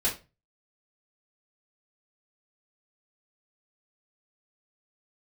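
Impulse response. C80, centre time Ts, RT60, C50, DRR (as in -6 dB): 18.0 dB, 21 ms, 0.30 s, 10.0 dB, -7.0 dB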